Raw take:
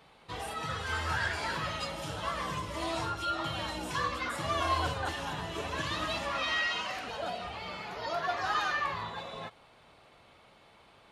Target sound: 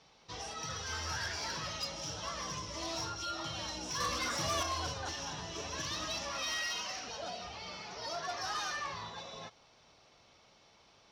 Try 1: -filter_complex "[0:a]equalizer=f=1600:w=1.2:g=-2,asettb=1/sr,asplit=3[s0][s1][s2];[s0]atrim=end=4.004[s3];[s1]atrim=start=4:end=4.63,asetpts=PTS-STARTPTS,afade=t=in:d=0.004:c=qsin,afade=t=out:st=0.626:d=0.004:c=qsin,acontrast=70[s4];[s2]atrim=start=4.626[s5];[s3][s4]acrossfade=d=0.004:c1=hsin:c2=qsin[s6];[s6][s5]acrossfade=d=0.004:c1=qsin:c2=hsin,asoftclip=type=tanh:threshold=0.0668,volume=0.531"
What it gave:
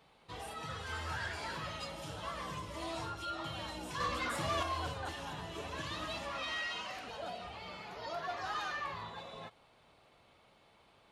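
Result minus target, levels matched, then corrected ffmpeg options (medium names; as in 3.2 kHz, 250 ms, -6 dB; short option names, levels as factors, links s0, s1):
8 kHz band -9.0 dB
-filter_complex "[0:a]lowpass=f=5700:t=q:w=9.7,equalizer=f=1600:w=1.2:g=-2,asettb=1/sr,asplit=3[s0][s1][s2];[s0]atrim=end=4.004[s3];[s1]atrim=start=4:end=4.63,asetpts=PTS-STARTPTS,afade=t=in:d=0.004:c=qsin,afade=t=out:st=0.626:d=0.004:c=qsin,acontrast=70[s4];[s2]atrim=start=4.626[s5];[s3][s4]acrossfade=d=0.004:c1=hsin:c2=qsin[s6];[s6][s5]acrossfade=d=0.004:c1=qsin:c2=hsin,asoftclip=type=tanh:threshold=0.0668,volume=0.531"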